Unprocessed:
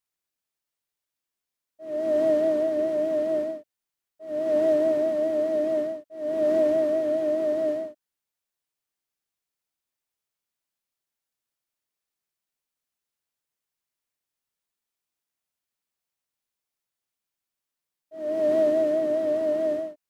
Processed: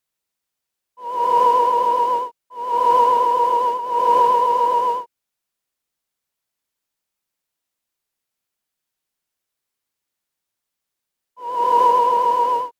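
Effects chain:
backwards echo 268 ms −5.5 dB
change of speed 1.57×
level +6 dB

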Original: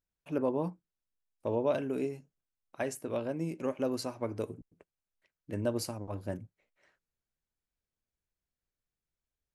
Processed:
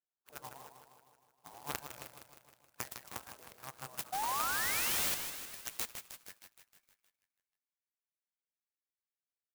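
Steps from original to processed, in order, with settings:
adaptive Wiener filter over 15 samples
gate on every frequency bin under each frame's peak −15 dB weak
spectral tilt +3.5 dB per octave
in parallel at +2.5 dB: downward compressor, threshold −55 dBFS, peak gain reduction 20 dB
on the sum: sound drawn into the spectrogram rise, 0:04.12–0:05.15, 730–4,600 Hz −33 dBFS
harmonic generator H 2 −12 dB, 3 −16 dB, 7 −27 dB, 8 −42 dB, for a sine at −20.5 dBFS
high-pass filter sweep 66 Hz → 2,400 Hz, 0:03.52–0:05.05
on a send: repeating echo 156 ms, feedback 60%, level −8 dB
on the sum: converter with an unsteady clock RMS 0.087 ms
level +3.5 dB

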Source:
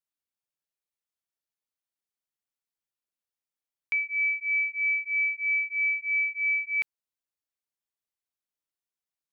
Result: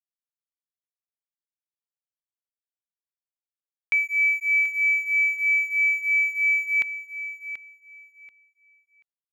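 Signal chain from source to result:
dead-zone distortion −54 dBFS
on a send: repeating echo 734 ms, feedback 21%, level −12 dB
on the sum: level +5.5 dB

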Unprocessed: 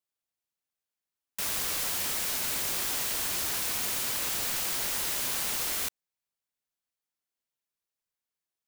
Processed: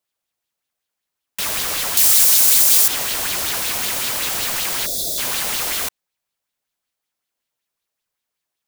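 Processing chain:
0:01.97–0:02.88: bass and treble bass −1 dB, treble +14 dB
0:04.86–0:05.18: gain on a spectral selection 750–3,300 Hz −25 dB
boost into a limiter +9.5 dB
auto-filter bell 5.3 Hz 550–3,900 Hz +7 dB
level −1.5 dB

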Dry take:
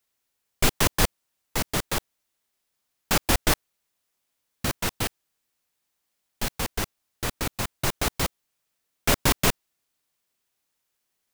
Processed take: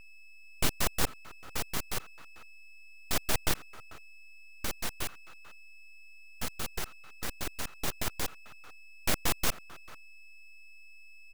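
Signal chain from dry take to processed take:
steady tone 1,300 Hz −41 dBFS
slap from a distant wall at 76 metres, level −21 dB
full-wave rectification
level −5.5 dB

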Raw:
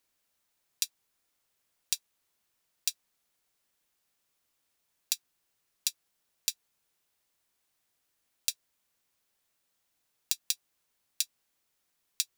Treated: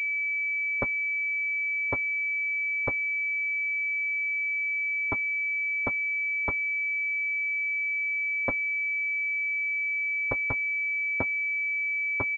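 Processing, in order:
comb filter 6.4 ms, depth 83%
switching amplifier with a slow clock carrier 2,300 Hz

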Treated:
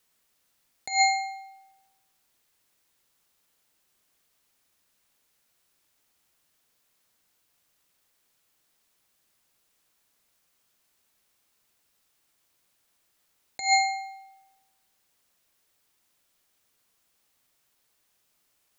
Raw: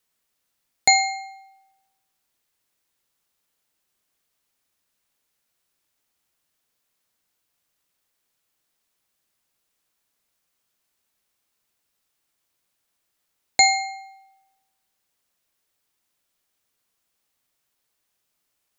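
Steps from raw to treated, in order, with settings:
compressor whose output falls as the input rises −22 dBFS, ratio −0.5

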